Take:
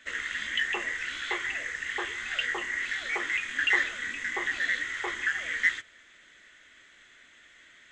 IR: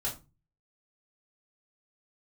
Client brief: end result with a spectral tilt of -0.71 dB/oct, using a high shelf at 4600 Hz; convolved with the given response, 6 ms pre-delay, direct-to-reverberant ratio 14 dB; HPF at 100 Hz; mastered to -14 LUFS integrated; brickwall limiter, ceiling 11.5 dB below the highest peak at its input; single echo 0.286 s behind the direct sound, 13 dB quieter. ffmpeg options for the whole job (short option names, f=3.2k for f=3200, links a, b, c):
-filter_complex "[0:a]highpass=100,highshelf=f=4.6k:g=-5,alimiter=limit=-23.5dB:level=0:latency=1,aecho=1:1:286:0.224,asplit=2[a][b];[1:a]atrim=start_sample=2205,adelay=6[c];[b][c]afir=irnorm=-1:irlink=0,volume=-17.5dB[d];[a][d]amix=inputs=2:normalize=0,volume=18dB"